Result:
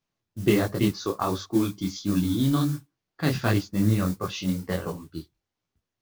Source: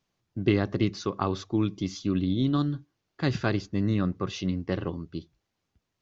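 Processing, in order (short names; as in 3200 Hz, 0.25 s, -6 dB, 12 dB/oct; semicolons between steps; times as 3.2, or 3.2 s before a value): modulation noise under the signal 19 dB; spectral noise reduction 8 dB; detuned doubles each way 49 cents; gain +6.5 dB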